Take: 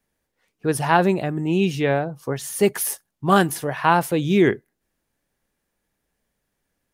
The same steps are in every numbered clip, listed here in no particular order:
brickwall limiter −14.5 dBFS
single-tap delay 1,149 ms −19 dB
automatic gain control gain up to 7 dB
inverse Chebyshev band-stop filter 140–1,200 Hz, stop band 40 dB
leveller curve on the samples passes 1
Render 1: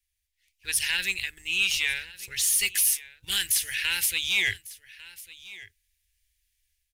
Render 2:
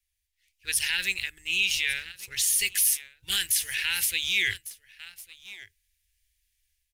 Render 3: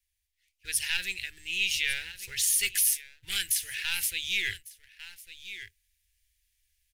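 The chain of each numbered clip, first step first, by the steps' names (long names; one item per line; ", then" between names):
inverse Chebyshev band-stop filter, then automatic gain control, then brickwall limiter, then leveller curve on the samples, then single-tap delay
inverse Chebyshev band-stop filter, then automatic gain control, then single-tap delay, then leveller curve on the samples, then brickwall limiter
single-tap delay, then automatic gain control, then leveller curve on the samples, then inverse Chebyshev band-stop filter, then brickwall limiter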